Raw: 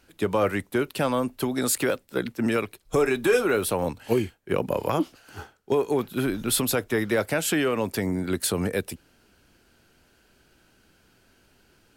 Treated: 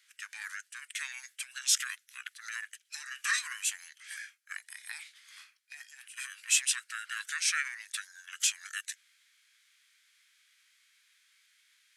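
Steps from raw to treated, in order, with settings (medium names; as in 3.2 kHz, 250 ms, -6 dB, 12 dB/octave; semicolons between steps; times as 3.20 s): formant shift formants -5 st; elliptic high-pass 1.6 kHz, stop band 70 dB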